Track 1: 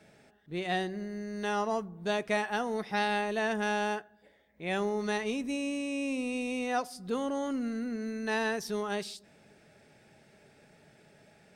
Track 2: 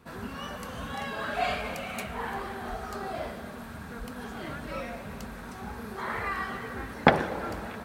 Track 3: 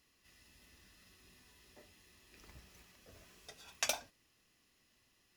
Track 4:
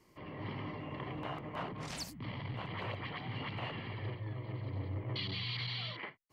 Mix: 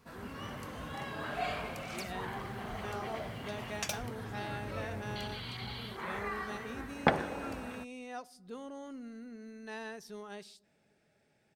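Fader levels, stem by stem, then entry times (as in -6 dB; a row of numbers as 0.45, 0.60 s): -12.5, -7.0, -2.5, -5.0 dB; 1.40, 0.00, 0.00, 0.00 s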